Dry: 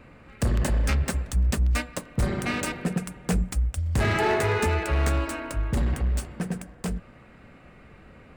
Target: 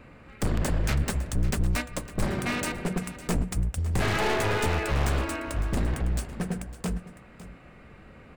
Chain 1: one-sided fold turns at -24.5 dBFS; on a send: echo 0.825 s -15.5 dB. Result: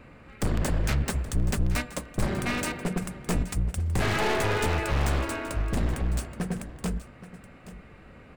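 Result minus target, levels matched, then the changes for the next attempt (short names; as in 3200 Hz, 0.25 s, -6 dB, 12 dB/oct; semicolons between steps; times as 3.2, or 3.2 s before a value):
echo 0.269 s late
change: echo 0.556 s -15.5 dB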